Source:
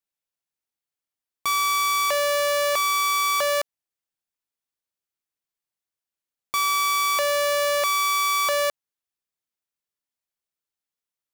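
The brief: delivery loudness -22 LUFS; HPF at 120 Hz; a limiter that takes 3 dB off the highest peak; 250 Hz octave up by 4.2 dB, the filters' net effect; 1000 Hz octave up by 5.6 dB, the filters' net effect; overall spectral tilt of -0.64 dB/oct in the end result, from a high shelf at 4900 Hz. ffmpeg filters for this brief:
-af "highpass=120,equalizer=f=250:t=o:g=6,equalizer=f=1k:t=o:g=6,highshelf=f=4.9k:g=6,volume=-3.5dB,alimiter=limit=-15.5dB:level=0:latency=1"

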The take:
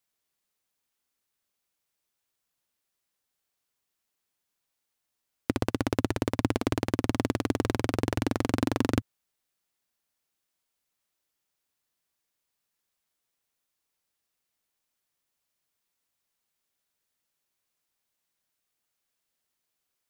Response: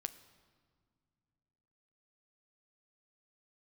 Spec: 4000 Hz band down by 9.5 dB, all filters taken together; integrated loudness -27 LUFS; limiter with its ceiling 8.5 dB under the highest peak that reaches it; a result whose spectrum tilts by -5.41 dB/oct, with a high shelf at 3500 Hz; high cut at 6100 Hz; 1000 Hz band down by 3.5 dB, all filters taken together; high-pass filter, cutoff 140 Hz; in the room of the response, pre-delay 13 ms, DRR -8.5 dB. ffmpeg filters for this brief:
-filter_complex "[0:a]highpass=140,lowpass=6.1k,equalizer=f=1k:t=o:g=-3.5,highshelf=f=3.5k:g=-8,equalizer=f=4k:t=o:g=-6.5,alimiter=limit=-20.5dB:level=0:latency=1,asplit=2[a][b];[1:a]atrim=start_sample=2205,adelay=13[c];[b][c]afir=irnorm=-1:irlink=0,volume=10.5dB[d];[a][d]amix=inputs=2:normalize=0,volume=1dB"

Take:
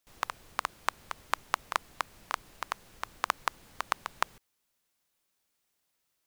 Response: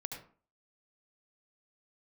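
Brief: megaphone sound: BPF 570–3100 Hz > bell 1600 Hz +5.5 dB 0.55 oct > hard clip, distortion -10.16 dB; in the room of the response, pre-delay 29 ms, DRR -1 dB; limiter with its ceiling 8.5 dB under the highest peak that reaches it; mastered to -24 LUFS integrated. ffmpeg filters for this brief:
-filter_complex "[0:a]alimiter=limit=-13.5dB:level=0:latency=1,asplit=2[a][b];[1:a]atrim=start_sample=2205,adelay=29[c];[b][c]afir=irnorm=-1:irlink=0,volume=2dB[d];[a][d]amix=inputs=2:normalize=0,highpass=570,lowpass=3.1k,equalizer=f=1.6k:t=o:w=0.55:g=5.5,asoftclip=type=hard:threshold=-22.5dB,volume=15dB"

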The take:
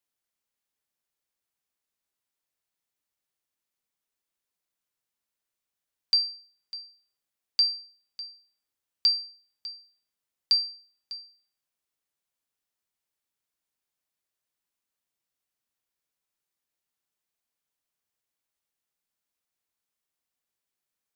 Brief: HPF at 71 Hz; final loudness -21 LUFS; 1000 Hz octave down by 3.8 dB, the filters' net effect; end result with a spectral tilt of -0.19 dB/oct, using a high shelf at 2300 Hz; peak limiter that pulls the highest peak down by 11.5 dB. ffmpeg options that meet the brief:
-af "highpass=71,equalizer=f=1k:t=o:g=-4,highshelf=f=2.3k:g=-4.5,volume=16.5dB,alimiter=limit=-12.5dB:level=0:latency=1"

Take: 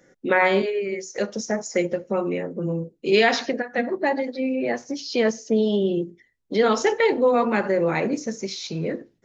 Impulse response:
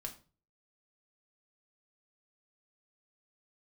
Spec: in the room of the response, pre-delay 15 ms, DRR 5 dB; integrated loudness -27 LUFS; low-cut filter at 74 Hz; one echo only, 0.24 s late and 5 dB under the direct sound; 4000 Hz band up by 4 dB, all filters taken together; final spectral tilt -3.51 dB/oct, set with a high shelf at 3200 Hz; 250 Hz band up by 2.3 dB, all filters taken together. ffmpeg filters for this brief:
-filter_complex "[0:a]highpass=74,equalizer=f=250:t=o:g=3,highshelf=f=3.2k:g=-4,equalizer=f=4k:t=o:g=8,aecho=1:1:240:0.562,asplit=2[a][b];[1:a]atrim=start_sample=2205,adelay=15[c];[b][c]afir=irnorm=-1:irlink=0,volume=-2.5dB[d];[a][d]amix=inputs=2:normalize=0,volume=-7dB"

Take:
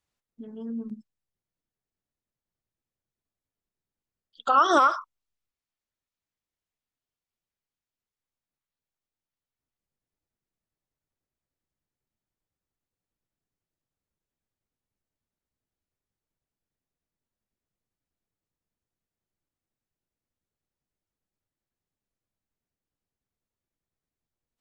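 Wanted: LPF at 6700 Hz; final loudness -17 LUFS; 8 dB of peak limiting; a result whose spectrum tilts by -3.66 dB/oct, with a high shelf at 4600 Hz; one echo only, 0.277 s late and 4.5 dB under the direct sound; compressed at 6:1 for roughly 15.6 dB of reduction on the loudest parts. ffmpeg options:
-af "lowpass=6.7k,highshelf=f=4.6k:g=5,acompressor=threshold=-32dB:ratio=6,alimiter=level_in=6dB:limit=-24dB:level=0:latency=1,volume=-6dB,aecho=1:1:277:0.596,volume=23.5dB"

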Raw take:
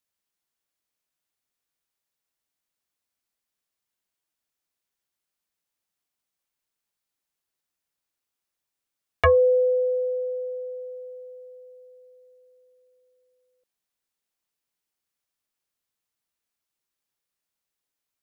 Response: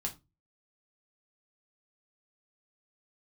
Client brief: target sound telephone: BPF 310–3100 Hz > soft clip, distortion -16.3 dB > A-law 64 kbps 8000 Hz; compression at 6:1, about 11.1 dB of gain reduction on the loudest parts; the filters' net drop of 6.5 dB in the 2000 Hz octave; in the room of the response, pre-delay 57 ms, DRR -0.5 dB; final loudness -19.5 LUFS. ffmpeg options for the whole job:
-filter_complex "[0:a]equalizer=f=2k:t=o:g=-7.5,acompressor=threshold=-28dB:ratio=6,asplit=2[a][b];[1:a]atrim=start_sample=2205,adelay=57[c];[b][c]afir=irnorm=-1:irlink=0,volume=-0.5dB[d];[a][d]amix=inputs=2:normalize=0,highpass=310,lowpass=3.1k,asoftclip=threshold=-20.5dB,volume=18.5dB" -ar 8000 -c:a pcm_alaw

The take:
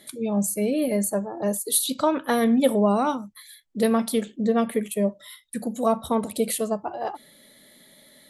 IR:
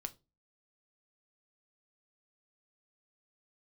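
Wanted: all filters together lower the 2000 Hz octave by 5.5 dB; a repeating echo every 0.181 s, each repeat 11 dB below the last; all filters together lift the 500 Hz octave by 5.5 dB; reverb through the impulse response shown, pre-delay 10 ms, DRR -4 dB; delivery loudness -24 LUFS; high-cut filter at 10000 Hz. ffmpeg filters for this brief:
-filter_complex "[0:a]lowpass=10k,equalizer=f=500:t=o:g=7,equalizer=f=2k:t=o:g=-7.5,aecho=1:1:181|362|543:0.282|0.0789|0.0221,asplit=2[a][b];[1:a]atrim=start_sample=2205,adelay=10[c];[b][c]afir=irnorm=-1:irlink=0,volume=6.5dB[d];[a][d]amix=inputs=2:normalize=0,volume=-7.5dB"

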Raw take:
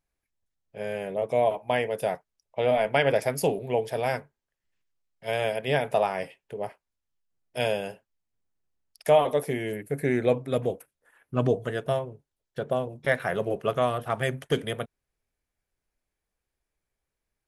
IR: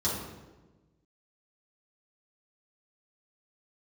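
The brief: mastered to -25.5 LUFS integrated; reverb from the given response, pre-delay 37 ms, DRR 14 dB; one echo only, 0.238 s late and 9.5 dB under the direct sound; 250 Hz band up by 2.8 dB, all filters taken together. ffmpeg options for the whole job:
-filter_complex "[0:a]equalizer=f=250:t=o:g=3.5,aecho=1:1:238:0.335,asplit=2[a][b];[1:a]atrim=start_sample=2205,adelay=37[c];[b][c]afir=irnorm=-1:irlink=0,volume=-22.5dB[d];[a][d]amix=inputs=2:normalize=0,volume=1dB"

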